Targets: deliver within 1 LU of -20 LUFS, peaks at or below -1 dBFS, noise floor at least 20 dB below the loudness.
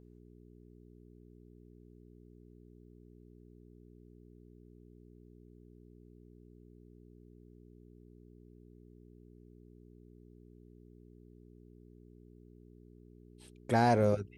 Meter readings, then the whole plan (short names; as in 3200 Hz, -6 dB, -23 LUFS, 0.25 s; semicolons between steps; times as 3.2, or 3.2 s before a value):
hum 60 Hz; harmonics up to 420 Hz; hum level -54 dBFS; loudness -28.5 LUFS; peak -14.0 dBFS; loudness target -20.0 LUFS
-> de-hum 60 Hz, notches 7; gain +8.5 dB